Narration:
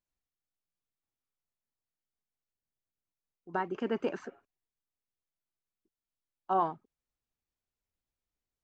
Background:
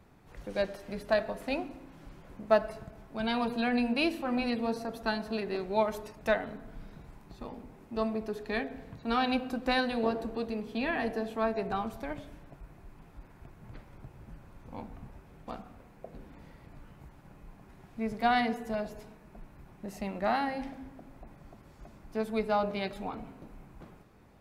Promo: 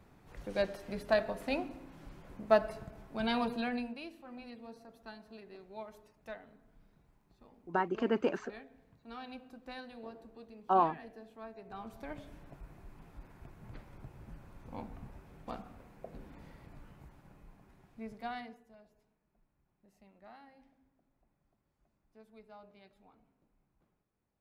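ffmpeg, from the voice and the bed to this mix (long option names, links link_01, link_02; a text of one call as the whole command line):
ffmpeg -i stem1.wav -i stem2.wav -filter_complex "[0:a]adelay=4200,volume=1.5dB[link_01];[1:a]volume=15dB,afade=type=out:start_time=3.36:duration=0.64:silence=0.149624,afade=type=in:start_time=11.65:duration=0.86:silence=0.149624,afade=type=out:start_time=16.55:duration=2.11:silence=0.0595662[link_02];[link_01][link_02]amix=inputs=2:normalize=0" out.wav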